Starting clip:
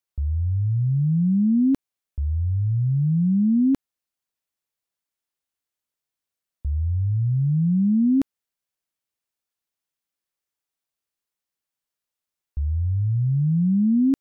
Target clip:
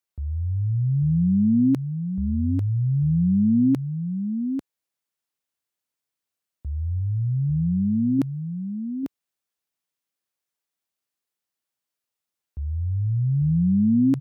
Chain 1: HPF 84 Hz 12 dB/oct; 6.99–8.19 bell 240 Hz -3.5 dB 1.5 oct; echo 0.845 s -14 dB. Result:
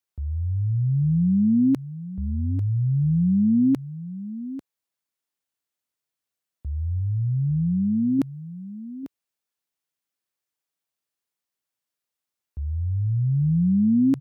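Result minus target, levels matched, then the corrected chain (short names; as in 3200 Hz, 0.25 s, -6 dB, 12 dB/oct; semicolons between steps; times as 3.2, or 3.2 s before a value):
echo-to-direct -6.5 dB
HPF 84 Hz 12 dB/oct; 6.99–8.19 bell 240 Hz -3.5 dB 1.5 oct; echo 0.845 s -7.5 dB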